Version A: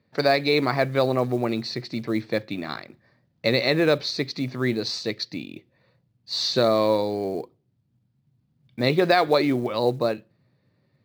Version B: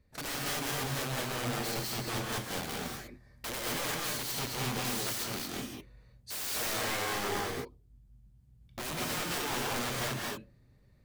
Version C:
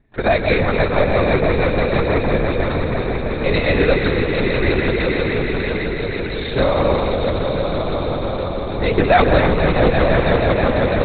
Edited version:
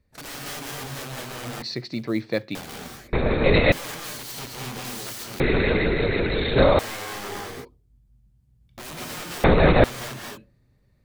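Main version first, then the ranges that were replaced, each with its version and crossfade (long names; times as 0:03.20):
B
0:01.62–0:02.55: punch in from A
0:03.13–0:03.72: punch in from C
0:05.40–0:06.79: punch in from C
0:09.44–0:09.84: punch in from C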